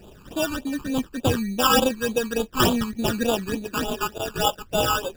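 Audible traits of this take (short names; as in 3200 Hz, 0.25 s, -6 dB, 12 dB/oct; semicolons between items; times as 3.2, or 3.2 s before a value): aliases and images of a low sample rate 2100 Hz, jitter 0%; phasing stages 12, 3.4 Hz, lowest notch 590–1900 Hz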